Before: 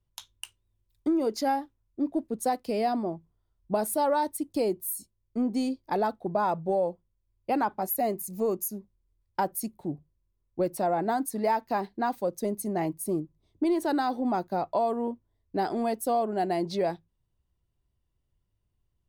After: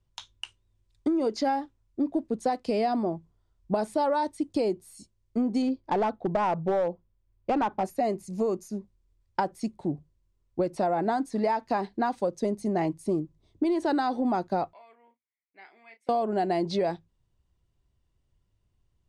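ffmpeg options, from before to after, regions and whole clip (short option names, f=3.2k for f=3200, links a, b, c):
-filter_complex "[0:a]asettb=1/sr,asplit=3[a][b][c];[a]atrim=end=5.624[d];[b]atrim=start=5.62:end=7.85,asetpts=PTS-STARTPTS,afade=t=in:d=0.004:c=qsin,afade=t=out:st=2.226:d=0.004:c=qsin,aemphasis=mode=reproduction:type=75fm,aeval=exprs='clip(val(0),-1,0.075)':c=same[e];[c]atrim=start=7.846[f];[d][e]acrossfade=d=0.004:c1=hsin:c2=qsin[g];[g][f]acrossfade=d=0.004:c1=qsin:c2=hsin,asettb=1/sr,asplit=3[h][i][j];[h]atrim=end=14.734[k];[i]atrim=start=14.73:end=16.09,asetpts=PTS-STARTPTS,afade=t=in:d=0.004:c=qsin,afade=t=out:st=1.356:d=0.004:c=qsin,bandpass=f=2.2k:t=q:w=13,asplit=2[l][m];[m]adelay=31,volume=-9dB[n];[l][n]amix=inputs=2:normalize=0,atrim=end_sample=59976[o];[j]atrim=start=16.086[p];[k][o]acrossfade=d=0.004:c1=hsin:c2=qsin[q];[q][p]acrossfade=d=0.004:c1=qsin:c2=hsin,acrossover=split=4900[r][s];[s]acompressor=threshold=-47dB:ratio=4:attack=1:release=60[t];[r][t]amix=inputs=2:normalize=0,lowpass=f=8.6k:w=0.5412,lowpass=f=8.6k:w=1.3066,acompressor=threshold=-27dB:ratio=6,volume=4.5dB"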